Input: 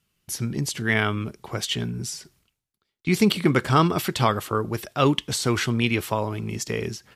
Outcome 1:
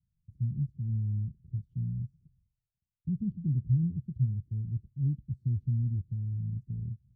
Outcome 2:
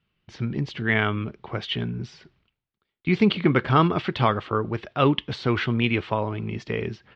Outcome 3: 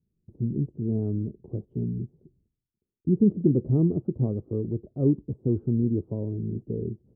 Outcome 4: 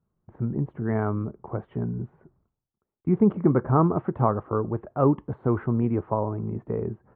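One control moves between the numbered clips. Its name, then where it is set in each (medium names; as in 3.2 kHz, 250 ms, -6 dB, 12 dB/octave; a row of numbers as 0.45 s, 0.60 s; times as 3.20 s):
inverse Chebyshev low-pass, stop band from: 660 Hz, 12 kHz, 1.8 kHz, 4.7 kHz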